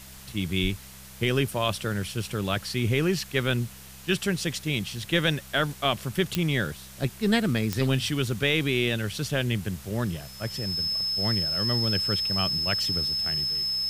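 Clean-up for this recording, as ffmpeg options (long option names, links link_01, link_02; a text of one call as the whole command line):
ffmpeg -i in.wav -af "adeclick=threshold=4,bandreject=frequency=65.8:width_type=h:width=4,bandreject=frequency=131.6:width_type=h:width=4,bandreject=frequency=197.4:width_type=h:width=4,bandreject=frequency=5200:width=30,afwtdn=0.005" out.wav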